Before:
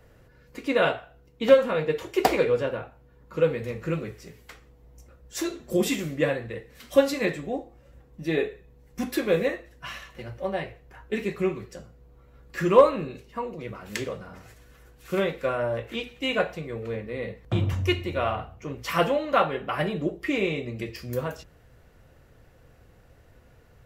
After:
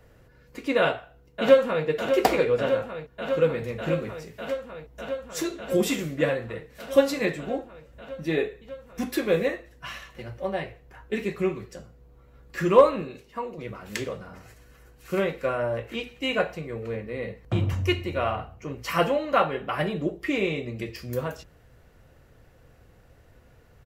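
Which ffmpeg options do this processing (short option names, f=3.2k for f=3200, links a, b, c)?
-filter_complex "[0:a]asplit=2[a][b];[b]afade=t=in:st=0.78:d=0.01,afade=t=out:st=1.86:d=0.01,aecho=0:1:600|1200|1800|2400|3000|3600|4200|4800|5400|6000|6600|7200:0.375837|0.319462|0.271543|0.230811|0.196189|0.166761|0.141747|0.120485|0.102412|0.0870503|0.0739928|0.0628939[c];[a][c]amix=inputs=2:normalize=0,asettb=1/sr,asplit=3[d][e][f];[d]atrim=end=13.024[g];[e]atrim=start=13.02:end=13.58,asetpts=PTS-STARTPTS,afade=t=in:d=0.004:c=qsin,afade=t=out:st=0.556:d=0.004:c=qsin,lowshelf=f=170:g=-7.5[h];[f]atrim=start=13.576[i];[g][h]acrossfade=d=0.004:c1=hsin:c2=qsin[j];[j][i]acrossfade=d=0.004:c1=qsin:c2=hsin,asettb=1/sr,asplit=3[k][l][m];[k]atrim=end=14.304[n];[l]atrim=start=14.3:end=19.57,asetpts=PTS-STARTPTS,afade=t=in:d=0.004:c=qsin,afade=t=out:st=5.266:d=0.004:c=qsin,bandreject=f=3.5k:w=12[o];[m]atrim=start=19.566[p];[n][o]acrossfade=d=0.004:c1=hsin:c2=qsin[q];[q][p]acrossfade=d=0.004:c1=qsin:c2=hsin"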